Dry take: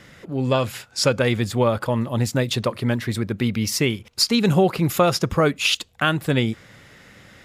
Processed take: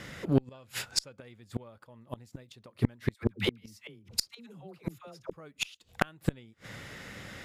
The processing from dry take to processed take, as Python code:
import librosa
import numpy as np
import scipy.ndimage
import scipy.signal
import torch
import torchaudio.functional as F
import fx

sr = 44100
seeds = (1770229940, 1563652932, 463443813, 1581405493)

y = fx.dispersion(x, sr, late='lows', ms=90.0, hz=600.0, at=(3.14, 5.33))
y = fx.gate_flip(y, sr, shuts_db=-15.0, range_db=-34)
y = fx.cheby_harmonics(y, sr, harmonics=(3, 4), levels_db=(-19, -27), full_scale_db=-12.0)
y = F.gain(torch.from_numpy(y), 6.0).numpy()